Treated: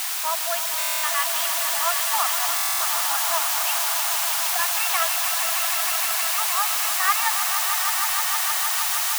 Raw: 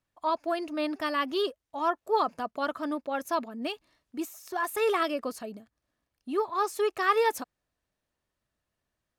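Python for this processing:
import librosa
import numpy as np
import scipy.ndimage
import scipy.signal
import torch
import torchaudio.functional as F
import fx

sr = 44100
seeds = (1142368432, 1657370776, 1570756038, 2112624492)

p1 = scipy.signal.sosfilt(scipy.signal.butter(4, 3000.0, 'lowpass', fs=sr, output='sos'), x)
p2 = fx.peak_eq(p1, sr, hz=800.0, db=-9.0, octaves=2.0)
p3 = fx.quant_dither(p2, sr, seeds[0], bits=6, dither='triangular')
p4 = fx.brickwall_highpass(p3, sr, low_hz=630.0)
p5 = p4 + fx.echo_swell(p4, sr, ms=155, loudest=5, wet_db=-9, dry=0)
p6 = fx.buffer_glitch(p5, sr, at_s=(0.78, 2.55), block=1024, repeats=10)
y = p6 * 10.0 ** (9.0 / 20.0)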